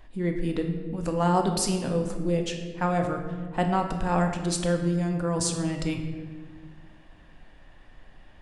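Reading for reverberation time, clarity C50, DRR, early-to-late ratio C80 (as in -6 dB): 1.6 s, 6.5 dB, 3.5 dB, 8.0 dB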